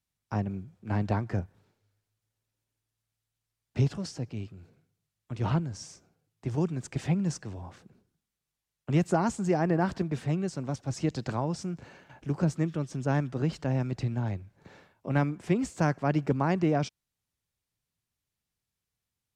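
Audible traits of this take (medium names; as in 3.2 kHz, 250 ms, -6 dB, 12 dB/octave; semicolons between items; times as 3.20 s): noise floor -87 dBFS; spectral tilt -6.5 dB/octave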